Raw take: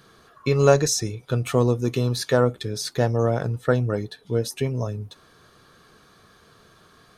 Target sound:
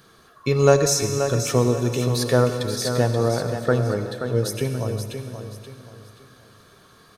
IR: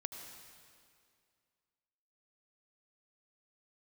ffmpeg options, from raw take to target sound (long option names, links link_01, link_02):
-filter_complex "[0:a]aecho=1:1:529|1058|1587|2116:0.398|0.127|0.0408|0.013,asplit=2[link_01][link_02];[1:a]atrim=start_sample=2205,highshelf=frequency=7300:gain=8.5[link_03];[link_02][link_03]afir=irnorm=-1:irlink=0,volume=5dB[link_04];[link_01][link_04]amix=inputs=2:normalize=0,volume=-7dB"